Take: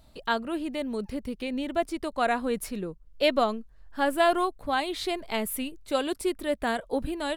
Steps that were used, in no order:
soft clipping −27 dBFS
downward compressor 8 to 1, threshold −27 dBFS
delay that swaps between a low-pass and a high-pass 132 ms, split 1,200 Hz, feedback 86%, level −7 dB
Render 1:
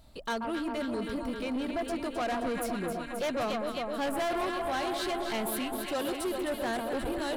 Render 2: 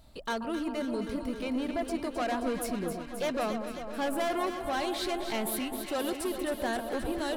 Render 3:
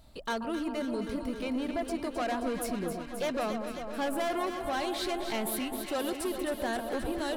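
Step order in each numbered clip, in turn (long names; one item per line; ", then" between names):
delay that swaps between a low-pass and a high-pass, then soft clipping, then downward compressor
soft clipping, then downward compressor, then delay that swaps between a low-pass and a high-pass
soft clipping, then delay that swaps between a low-pass and a high-pass, then downward compressor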